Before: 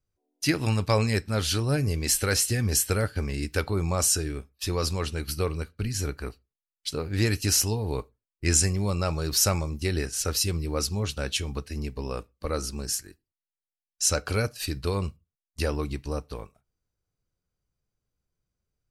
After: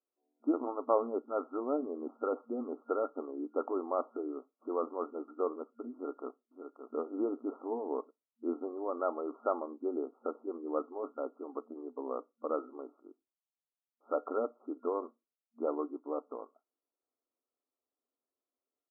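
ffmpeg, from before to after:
ffmpeg -i in.wav -filter_complex "[0:a]asplit=2[link_01][link_02];[link_02]afade=type=in:start_time=5.94:duration=0.01,afade=type=out:start_time=6.96:duration=0.01,aecho=0:1:570|1140|1710:0.398107|0.0796214|0.0159243[link_03];[link_01][link_03]amix=inputs=2:normalize=0,asettb=1/sr,asplit=3[link_04][link_05][link_06];[link_04]atrim=end=9.754[link_07];[link_05]atrim=start=9.75:end=10.6,asetpts=PTS-STARTPTS,afade=type=in:duration=0.004:curve=qsin,afade=type=out:start_time=0.846:duration=0.004:curve=qsin,lowpass=1300[link_08];[link_06]atrim=start=10.596[link_09];[link_07][link_08]acrossfade=duration=0.004:curve1=hsin:curve2=qsin[link_10];[link_10][link_09]acrossfade=duration=0.004:curve1=qsin:curve2=hsin,afftfilt=real='re*between(b*sr/4096,230,1400)':imag='im*between(b*sr/4096,230,1400)':win_size=4096:overlap=0.75,equalizer=frequency=670:width_type=o:width=0.26:gain=4.5,volume=-3.5dB" out.wav

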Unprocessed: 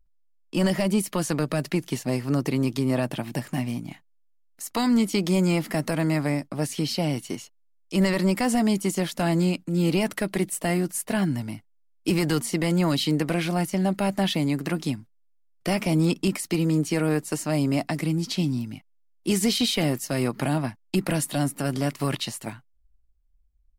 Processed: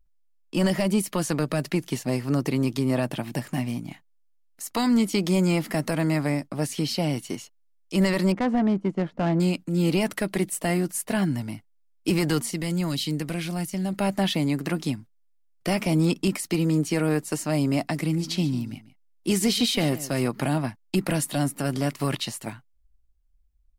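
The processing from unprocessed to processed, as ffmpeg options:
ffmpeg -i in.wav -filter_complex "[0:a]asettb=1/sr,asplit=3[link_01][link_02][link_03];[link_01]atrim=end=8.324[link_04];[link_02]atrim=start=8.32:end=9.4,asetpts=PTS-STARTPTS,afade=type=in:duration=0.004:curve=qsin,afade=type=out:start_time=1.076:duration=0.004:curve=qsin,adynamicsmooth=sensitivity=1:basefreq=760[link_05];[link_03]atrim=start=9.396[link_06];[link_04][link_05]acrossfade=duration=0.004:curve1=hsin:curve2=qsin[link_07];[link_07][link_06]acrossfade=duration=0.004:curve1=qsin:curve2=hsin,asettb=1/sr,asplit=3[link_08][link_09][link_10];[link_08]atrim=end=12.514[link_11];[link_09]atrim=start=12.51:end=13.93,asetpts=PTS-STARTPTS,afade=type=in:duration=0.004:curve=qsin,afade=type=out:start_time=1.416:duration=0.004:curve=qsin,equalizer=frequency=750:width=0.33:gain=-8.5[link_12];[link_10]atrim=start=13.926[link_13];[link_11][link_12]acrossfade=duration=0.004:curve1=hsin:curve2=qsin[link_14];[link_14][link_13]acrossfade=duration=0.004:curve1=qsin:curve2=hsin,asettb=1/sr,asplit=3[link_15][link_16][link_17];[link_15]atrim=end=17.984[link_18];[link_16]atrim=start=17.98:end=20.28,asetpts=PTS-STARTPTS,afade=type=in:duration=0.004:curve=qsin,afade=type=out:start_time=2.296:duration=0.004:curve=qsin,aecho=1:1:143:0.158,atrim=end_sample=101430[link_19];[link_17]atrim=start=20.276[link_20];[link_18][link_19]acrossfade=duration=0.004:curve1=hsin:curve2=qsin[link_21];[link_21][link_20]acrossfade=duration=0.004:curve1=qsin:curve2=hsin" out.wav

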